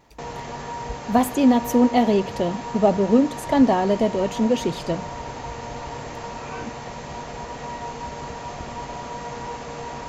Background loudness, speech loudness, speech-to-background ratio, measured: −33.5 LKFS, −20.5 LKFS, 13.0 dB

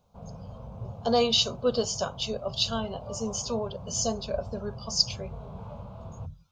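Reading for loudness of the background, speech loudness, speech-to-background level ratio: −43.0 LKFS, −28.5 LKFS, 14.5 dB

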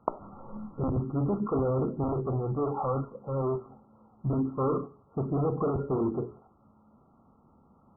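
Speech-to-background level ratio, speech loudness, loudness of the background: 9.0 dB, −30.5 LKFS, −39.5 LKFS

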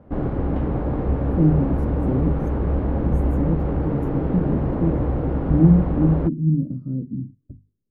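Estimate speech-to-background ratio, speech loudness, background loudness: 1.0 dB, −23.0 LKFS, −24.0 LKFS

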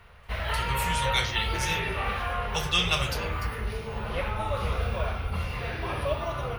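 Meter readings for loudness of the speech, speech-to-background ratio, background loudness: −29.0 LKFS, 1.5 dB, −30.5 LKFS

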